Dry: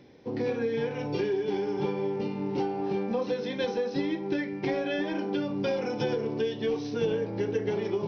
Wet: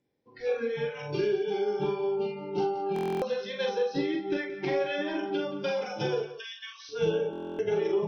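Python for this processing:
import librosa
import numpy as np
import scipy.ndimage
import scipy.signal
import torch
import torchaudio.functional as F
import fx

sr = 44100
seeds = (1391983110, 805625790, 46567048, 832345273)

y = fx.highpass(x, sr, hz=1100.0, slope=24, at=(6.22, 6.89))
y = fx.noise_reduce_blind(y, sr, reduce_db=25)
y = fx.doubler(y, sr, ms=43.0, db=-4.0)
y = y + 10.0 ** (-14.0 / 20.0) * np.pad(y, (int(175 * sr / 1000.0), 0))[:len(y)]
y = fx.buffer_glitch(y, sr, at_s=(2.94, 7.31), block=1024, repeats=11)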